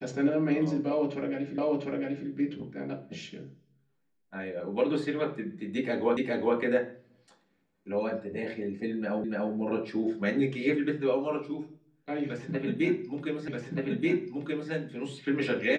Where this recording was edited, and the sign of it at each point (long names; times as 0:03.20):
0:01.58: the same again, the last 0.7 s
0:06.17: the same again, the last 0.41 s
0:09.24: the same again, the last 0.29 s
0:13.48: the same again, the last 1.23 s